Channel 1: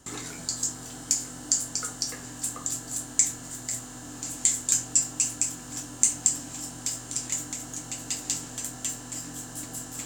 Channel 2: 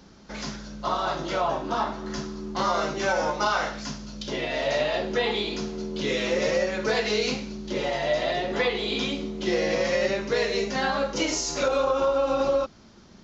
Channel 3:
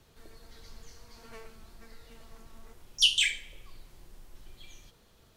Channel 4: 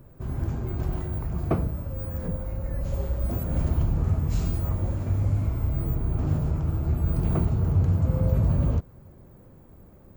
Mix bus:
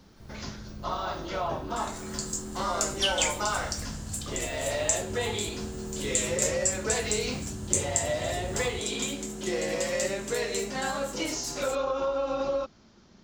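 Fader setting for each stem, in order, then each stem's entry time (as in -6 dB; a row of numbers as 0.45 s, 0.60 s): -5.0 dB, -5.5 dB, -5.0 dB, -16.5 dB; 1.70 s, 0.00 s, 0.00 s, 0.00 s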